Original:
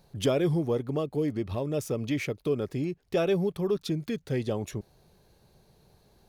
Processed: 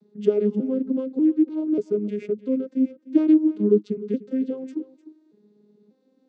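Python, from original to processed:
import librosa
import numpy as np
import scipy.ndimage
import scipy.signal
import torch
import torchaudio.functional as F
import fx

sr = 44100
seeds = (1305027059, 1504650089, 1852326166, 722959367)

p1 = fx.vocoder_arp(x, sr, chord='major triad', root=56, every_ms=590)
p2 = fx.low_shelf_res(p1, sr, hz=530.0, db=7.0, q=3.0)
p3 = p2 + fx.echo_single(p2, sr, ms=302, db=-17.0, dry=0)
y = F.gain(torch.from_numpy(p3), -2.5).numpy()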